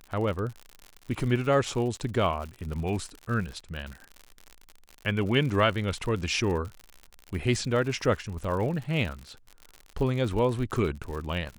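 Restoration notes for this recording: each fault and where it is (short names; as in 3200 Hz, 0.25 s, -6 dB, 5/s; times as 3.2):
crackle 80/s -34 dBFS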